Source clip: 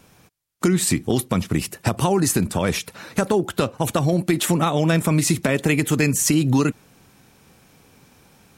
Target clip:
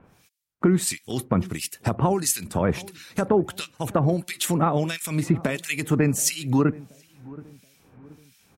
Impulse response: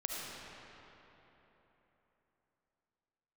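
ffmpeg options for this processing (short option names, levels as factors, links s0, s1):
-filter_complex "[0:a]acrossover=split=1900[s0][s1];[s0]aeval=exprs='val(0)*(1-1/2+1/2*cos(2*PI*1.5*n/s))':c=same[s2];[s1]aeval=exprs='val(0)*(1-1/2-1/2*cos(2*PI*1.5*n/s))':c=same[s3];[s2][s3]amix=inputs=2:normalize=0,asplit=2[s4][s5];[s5]adelay=727,lowpass=f=890:p=1,volume=0.1,asplit=2[s6][s7];[s7]adelay=727,lowpass=f=890:p=1,volume=0.44,asplit=2[s8][s9];[s9]adelay=727,lowpass=f=890:p=1,volume=0.44[s10];[s4][s6][s8][s10]amix=inputs=4:normalize=0"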